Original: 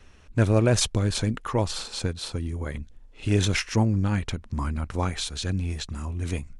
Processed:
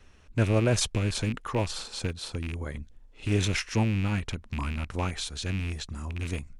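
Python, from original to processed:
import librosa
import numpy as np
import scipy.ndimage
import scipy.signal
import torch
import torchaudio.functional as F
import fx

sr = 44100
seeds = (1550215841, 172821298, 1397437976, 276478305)

y = fx.rattle_buzz(x, sr, strikes_db=-26.0, level_db=-23.0)
y = y * 10.0 ** (-3.5 / 20.0)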